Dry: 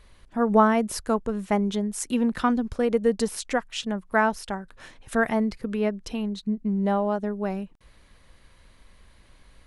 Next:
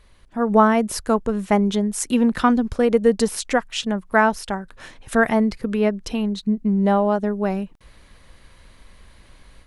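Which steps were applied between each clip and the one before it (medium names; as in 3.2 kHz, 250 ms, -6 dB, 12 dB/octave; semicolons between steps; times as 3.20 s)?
level rider gain up to 6 dB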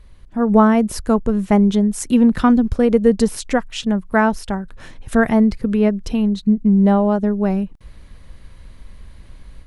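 bass shelf 280 Hz +11.5 dB; trim -1.5 dB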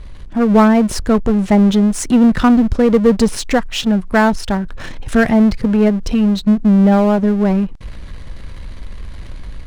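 low-pass 7.7 kHz 12 dB/octave; power-law waveshaper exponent 0.7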